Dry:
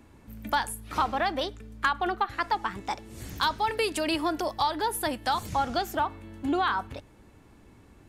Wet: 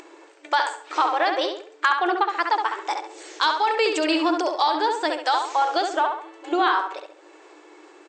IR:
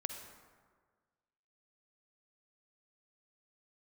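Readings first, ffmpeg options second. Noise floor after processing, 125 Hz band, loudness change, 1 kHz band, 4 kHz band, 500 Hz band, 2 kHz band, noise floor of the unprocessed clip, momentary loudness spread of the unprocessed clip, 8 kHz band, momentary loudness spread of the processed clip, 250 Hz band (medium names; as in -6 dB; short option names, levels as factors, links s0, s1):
-51 dBFS, under -30 dB, +6.0 dB, +6.5 dB, +6.0 dB, +6.5 dB, +6.5 dB, -55 dBFS, 9 LU, 0.0 dB, 8 LU, +4.5 dB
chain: -filter_complex "[0:a]asplit=2[s0][s1];[s1]adelay=68,lowpass=f=3600:p=1,volume=0.596,asplit=2[s2][s3];[s3]adelay=68,lowpass=f=3600:p=1,volume=0.4,asplit=2[s4][s5];[s5]adelay=68,lowpass=f=3600:p=1,volume=0.4,asplit=2[s6][s7];[s7]adelay=68,lowpass=f=3600:p=1,volume=0.4,asplit=2[s8][s9];[s9]adelay=68,lowpass=f=3600:p=1,volume=0.4[s10];[s0][s2][s4][s6][s8][s10]amix=inputs=6:normalize=0,acompressor=mode=upward:threshold=0.0112:ratio=2.5,afftfilt=real='re*between(b*sr/4096,300,8400)':imag='im*between(b*sr/4096,300,8400)':win_size=4096:overlap=0.75,volume=1.78"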